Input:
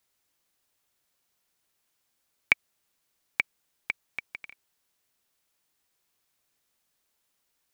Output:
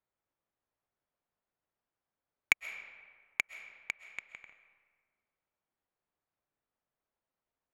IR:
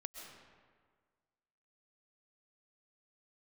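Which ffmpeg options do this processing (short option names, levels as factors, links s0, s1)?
-filter_complex "[0:a]adynamicsmooth=sensitivity=1.5:basefreq=1500,asplit=2[s0][s1];[s1]lowshelf=f=410:t=q:w=1.5:g=-6[s2];[1:a]atrim=start_sample=2205[s3];[s2][s3]afir=irnorm=-1:irlink=0,volume=0.944[s4];[s0][s4]amix=inputs=2:normalize=0,volume=0.398"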